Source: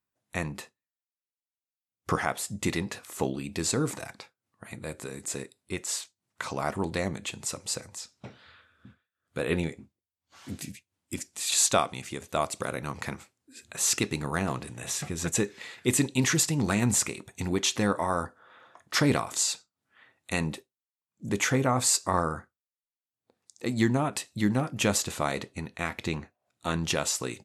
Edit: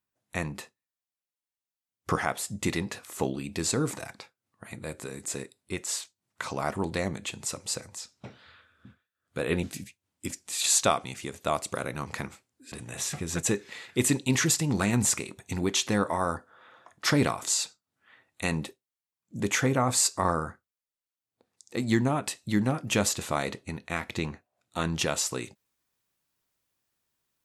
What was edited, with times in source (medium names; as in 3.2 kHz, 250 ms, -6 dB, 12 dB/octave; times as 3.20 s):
9.63–10.51 s: delete
13.60–14.61 s: delete